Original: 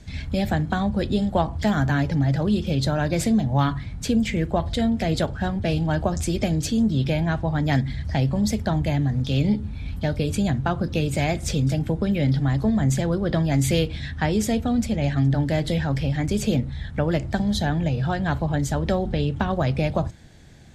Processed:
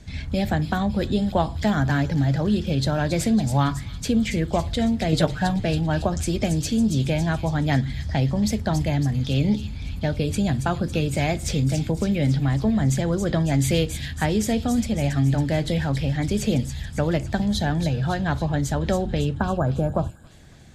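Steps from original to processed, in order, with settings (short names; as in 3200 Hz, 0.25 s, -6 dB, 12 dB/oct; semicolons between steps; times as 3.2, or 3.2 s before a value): 5.12–5.65 comb 6.6 ms, depth 96%; 19.37–20.3 spectral gain 1700–6800 Hz -22 dB; thin delay 0.277 s, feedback 57%, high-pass 3800 Hz, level -6 dB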